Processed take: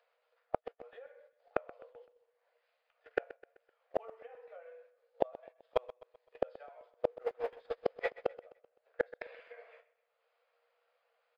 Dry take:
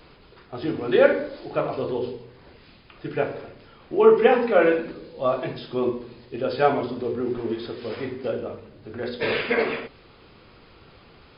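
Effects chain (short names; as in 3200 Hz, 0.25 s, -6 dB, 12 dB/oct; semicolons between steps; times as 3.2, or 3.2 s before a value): G.711 law mismatch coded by A; rippled Chebyshev high-pass 470 Hz, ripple 6 dB; in parallel at +1.5 dB: upward compressor, threshold -32 dBFS; on the sum: doubler 13 ms -9 dB; gate -29 dBFS, range -44 dB; tilt -3.5 dB/oct; compressor 10:1, threshold -18 dBFS, peak gain reduction 13 dB; flipped gate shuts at -26 dBFS, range -42 dB; on a send: feedback echo 0.128 s, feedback 44%, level -18 dB; on the sum: gain +11.5 dB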